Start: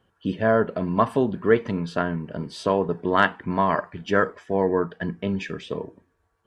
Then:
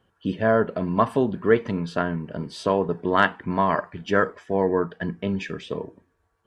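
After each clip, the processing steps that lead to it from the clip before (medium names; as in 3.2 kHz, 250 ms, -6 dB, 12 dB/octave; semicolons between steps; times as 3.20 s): no audible change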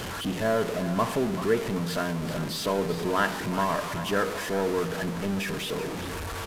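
jump at every zero crossing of -20.5 dBFS; resampled via 32 kHz; two-band feedback delay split 570 Hz, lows 122 ms, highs 385 ms, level -11.5 dB; trim -8 dB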